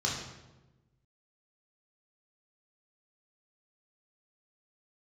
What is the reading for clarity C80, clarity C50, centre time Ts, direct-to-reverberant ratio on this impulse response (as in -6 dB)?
5.5 dB, 3.0 dB, 53 ms, -4.5 dB